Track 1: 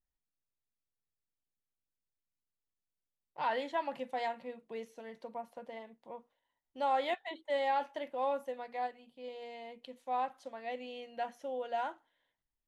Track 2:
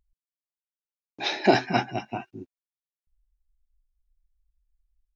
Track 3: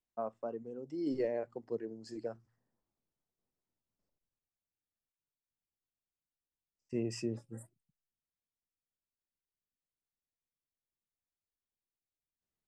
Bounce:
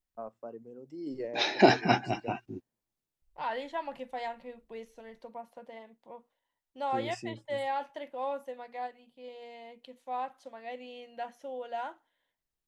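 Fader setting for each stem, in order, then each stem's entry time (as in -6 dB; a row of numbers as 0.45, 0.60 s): -1.0, -1.0, -3.5 dB; 0.00, 0.15, 0.00 s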